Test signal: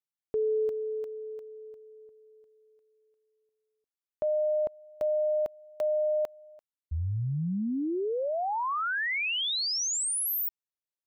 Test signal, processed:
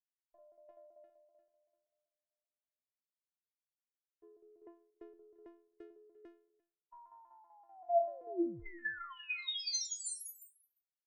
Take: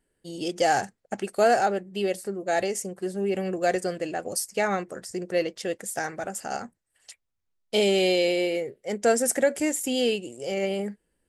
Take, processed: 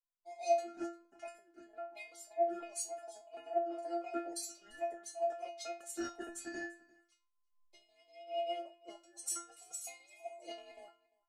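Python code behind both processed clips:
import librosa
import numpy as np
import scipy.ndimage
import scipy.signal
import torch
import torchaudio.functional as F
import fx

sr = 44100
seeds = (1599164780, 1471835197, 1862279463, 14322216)

y = fx.band_invert(x, sr, width_hz=1000)
y = scipy.signal.sosfilt(scipy.signal.bessel(2, 7300.0, 'lowpass', norm='mag', fs=sr, output='sos'), y)
y = fx.over_compress(y, sr, threshold_db=-29.0, ratio=-0.5)
y = fx.chopper(y, sr, hz=5.2, depth_pct=65, duty_pct=70)
y = fx.stiff_resonator(y, sr, f0_hz=340.0, decay_s=0.45, stiffness=0.002)
y = y + 10.0 ** (-17.0 / 20.0) * np.pad(y, (int(347 * sr / 1000.0), 0))[:len(y)]
y = fx.band_widen(y, sr, depth_pct=70)
y = y * librosa.db_to_amplitude(4.0)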